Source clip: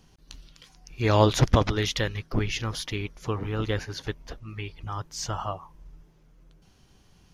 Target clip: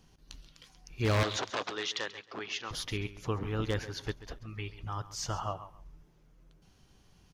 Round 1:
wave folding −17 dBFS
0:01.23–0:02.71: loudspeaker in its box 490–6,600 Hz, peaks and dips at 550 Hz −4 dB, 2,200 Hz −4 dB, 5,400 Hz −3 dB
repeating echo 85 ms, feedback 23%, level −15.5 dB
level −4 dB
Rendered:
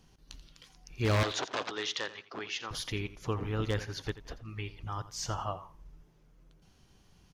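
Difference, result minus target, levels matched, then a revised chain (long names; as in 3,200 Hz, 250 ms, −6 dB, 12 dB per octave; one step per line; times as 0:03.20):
echo 50 ms early
wave folding −17 dBFS
0:01.23–0:02.71: loudspeaker in its box 490–6,600 Hz, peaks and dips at 550 Hz −4 dB, 2,200 Hz −4 dB, 5,400 Hz −3 dB
repeating echo 135 ms, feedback 23%, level −15.5 dB
level −4 dB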